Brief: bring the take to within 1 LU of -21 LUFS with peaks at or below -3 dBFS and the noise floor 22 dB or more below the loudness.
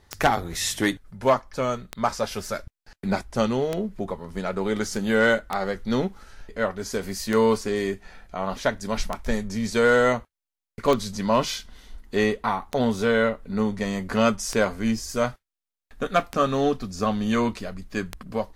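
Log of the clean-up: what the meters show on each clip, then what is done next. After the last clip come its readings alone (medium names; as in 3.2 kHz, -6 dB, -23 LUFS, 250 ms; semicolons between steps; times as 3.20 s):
clicks found 11; loudness -25.0 LUFS; peak level -9.5 dBFS; loudness target -21.0 LUFS
-> de-click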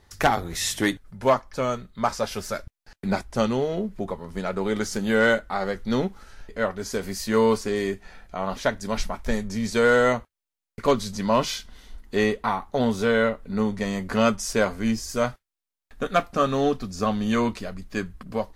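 clicks found 0; loudness -25.0 LUFS; peak level -9.5 dBFS; loudness target -21.0 LUFS
-> trim +4 dB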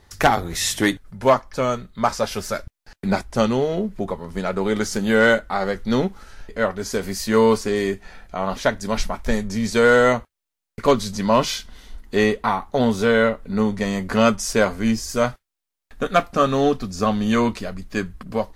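loudness -21.0 LUFS; peak level -5.5 dBFS; noise floor -83 dBFS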